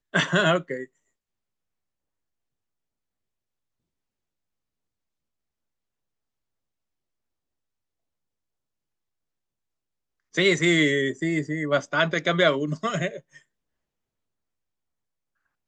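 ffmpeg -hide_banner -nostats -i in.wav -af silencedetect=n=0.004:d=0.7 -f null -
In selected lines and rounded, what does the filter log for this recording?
silence_start: 0.86
silence_end: 10.34 | silence_duration: 9.48
silence_start: 13.39
silence_end: 15.67 | silence_duration: 2.29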